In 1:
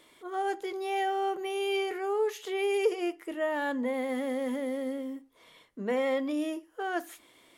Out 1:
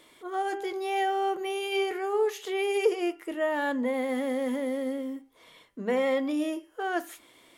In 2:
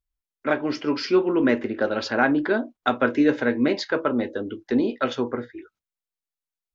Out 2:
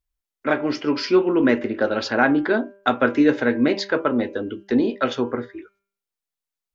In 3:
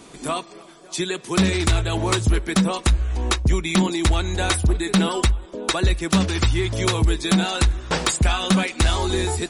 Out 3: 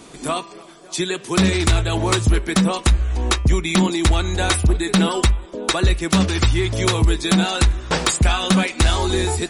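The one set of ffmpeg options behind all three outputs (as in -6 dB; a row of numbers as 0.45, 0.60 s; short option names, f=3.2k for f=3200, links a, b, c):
-af "bandreject=f=198.3:t=h:w=4,bandreject=f=396.6:t=h:w=4,bandreject=f=594.9:t=h:w=4,bandreject=f=793.2:t=h:w=4,bandreject=f=991.5:t=h:w=4,bandreject=f=1.1898k:t=h:w=4,bandreject=f=1.3881k:t=h:w=4,bandreject=f=1.5864k:t=h:w=4,bandreject=f=1.7847k:t=h:w=4,bandreject=f=1.983k:t=h:w=4,bandreject=f=2.1813k:t=h:w=4,bandreject=f=2.3796k:t=h:w=4,bandreject=f=2.5779k:t=h:w=4,bandreject=f=2.7762k:t=h:w=4,bandreject=f=2.9745k:t=h:w=4,bandreject=f=3.1728k:t=h:w=4,volume=2.5dB"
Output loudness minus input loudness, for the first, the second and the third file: +2.0, +2.5, +2.5 LU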